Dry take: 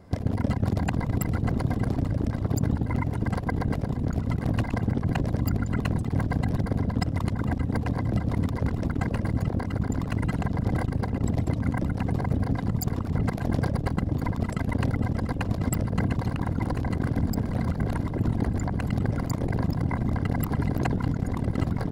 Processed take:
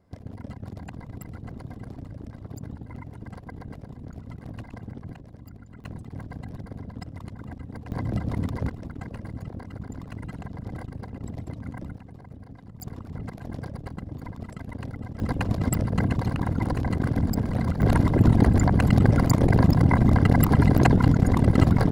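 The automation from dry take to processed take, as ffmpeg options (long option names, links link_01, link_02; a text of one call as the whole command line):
ffmpeg -i in.wav -af "asetnsamples=nb_out_samples=441:pad=0,asendcmd='5.15 volume volume -19.5dB;5.84 volume volume -12dB;7.92 volume volume -2dB;8.7 volume volume -10dB;11.97 volume volume -18.5dB;12.8 volume volume -10dB;15.2 volume volume 1.5dB;17.82 volume volume 8dB',volume=-13dB" out.wav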